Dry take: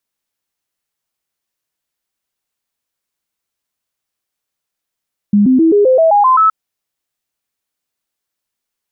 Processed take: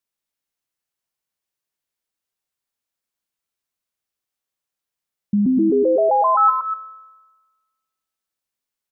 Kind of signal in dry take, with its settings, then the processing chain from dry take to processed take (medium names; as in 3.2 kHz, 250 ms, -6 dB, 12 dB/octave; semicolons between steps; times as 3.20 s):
stepped sine 205 Hz up, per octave 3, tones 9, 0.13 s, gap 0.00 s -6 dBFS
feedback comb 62 Hz, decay 1.3 s, harmonics all, mix 60%; on a send: delay 240 ms -7.5 dB